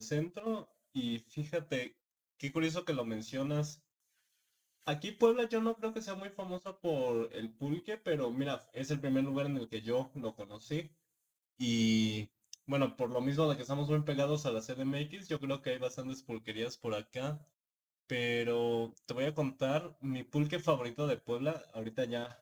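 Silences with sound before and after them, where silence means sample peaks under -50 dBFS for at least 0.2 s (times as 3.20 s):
0.65–0.95 s
1.90–2.40 s
3.76–4.87 s
10.87–11.60 s
12.26–12.53 s
17.42–18.10 s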